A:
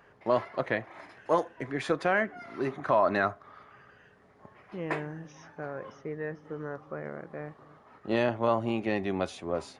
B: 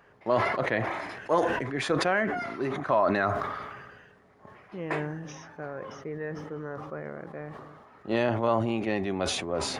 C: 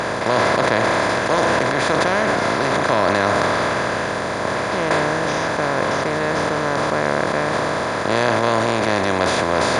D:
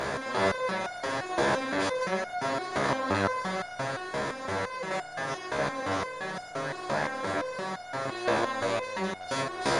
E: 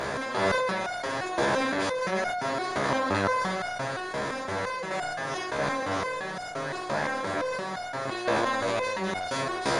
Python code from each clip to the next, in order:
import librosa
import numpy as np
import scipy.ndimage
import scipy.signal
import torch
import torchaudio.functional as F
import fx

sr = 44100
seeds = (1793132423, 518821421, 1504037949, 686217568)

y1 = fx.sustainer(x, sr, db_per_s=37.0)
y2 = fx.bin_compress(y1, sr, power=0.2)
y3 = fx.resonator_held(y2, sr, hz=5.8, low_hz=69.0, high_hz=720.0)
y4 = fx.sustainer(y3, sr, db_per_s=21.0)